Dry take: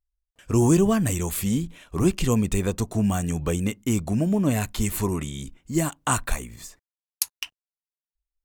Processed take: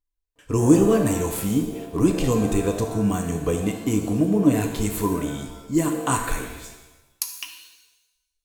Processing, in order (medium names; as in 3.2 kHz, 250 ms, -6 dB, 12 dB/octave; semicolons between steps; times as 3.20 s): small resonant body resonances 300/450/1000 Hz, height 12 dB, ringing for 85 ms; pitch-shifted reverb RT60 1 s, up +7 st, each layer -8 dB, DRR 4.5 dB; trim -2.5 dB